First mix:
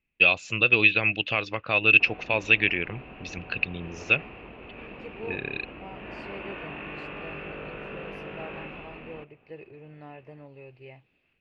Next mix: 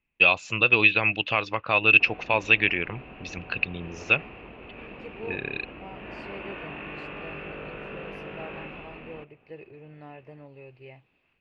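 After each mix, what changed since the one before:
first voice: add bell 970 Hz +7 dB 0.82 oct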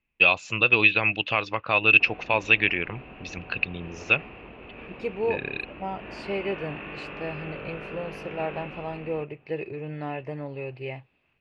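second voice +12.0 dB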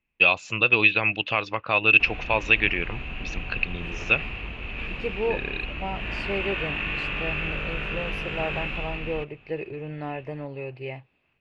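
background: remove band-pass 480 Hz, Q 0.75

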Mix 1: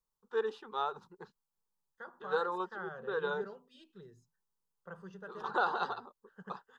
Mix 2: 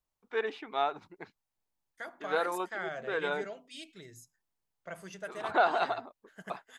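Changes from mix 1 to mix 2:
second voice: remove LPF 2200 Hz 12 dB/oct; master: remove fixed phaser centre 440 Hz, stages 8

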